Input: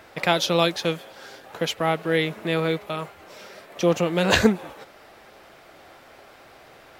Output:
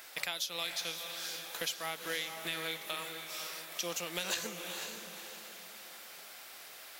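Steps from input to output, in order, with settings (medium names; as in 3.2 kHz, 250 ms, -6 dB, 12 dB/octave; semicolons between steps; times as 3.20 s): differentiator; compression 6:1, threshold -43 dBFS, peak gain reduction 19 dB; bass shelf 170 Hz +11.5 dB; hum notches 50/100/150 Hz; on a send: echo that smears into a reverb 498 ms, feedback 41%, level -6 dB; on the sum: trim +8.5 dB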